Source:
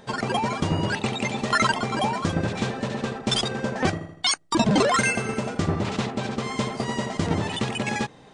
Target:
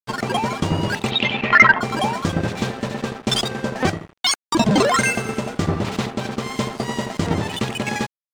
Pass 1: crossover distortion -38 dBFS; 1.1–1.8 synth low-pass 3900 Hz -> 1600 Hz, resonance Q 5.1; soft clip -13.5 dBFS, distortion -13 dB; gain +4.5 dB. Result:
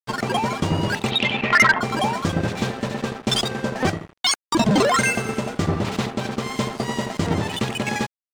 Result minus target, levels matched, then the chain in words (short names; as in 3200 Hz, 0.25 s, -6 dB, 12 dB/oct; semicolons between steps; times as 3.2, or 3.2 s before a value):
soft clip: distortion +12 dB
crossover distortion -38 dBFS; 1.1–1.8 synth low-pass 3900 Hz -> 1600 Hz, resonance Q 5.1; soft clip -4 dBFS, distortion -25 dB; gain +4.5 dB